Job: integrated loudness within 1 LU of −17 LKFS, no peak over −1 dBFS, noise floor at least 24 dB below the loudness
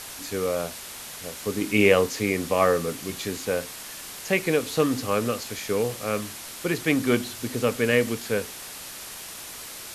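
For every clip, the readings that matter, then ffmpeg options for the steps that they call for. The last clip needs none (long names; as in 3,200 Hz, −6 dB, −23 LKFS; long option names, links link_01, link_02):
background noise floor −39 dBFS; target noise floor −50 dBFS; integrated loudness −25.5 LKFS; sample peak −5.0 dBFS; target loudness −17.0 LKFS
→ -af "afftdn=noise_reduction=11:noise_floor=-39"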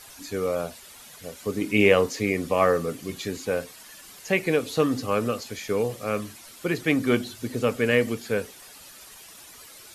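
background noise floor −47 dBFS; target noise floor −50 dBFS
→ -af "afftdn=noise_reduction=6:noise_floor=-47"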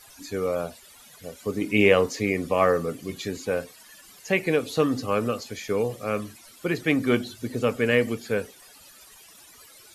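background noise floor −51 dBFS; integrated loudness −25.5 LKFS; sample peak −5.0 dBFS; target loudness −17.0 LKFS
→ -af "volume=8.5dB,alimiter=limit=-1dB:level=0:latency=1"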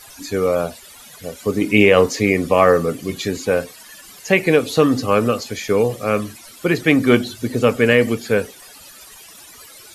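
integrated loudness −17.5 LKFS; sample peak −1.0 dBFS; background noise floor −42 dBFS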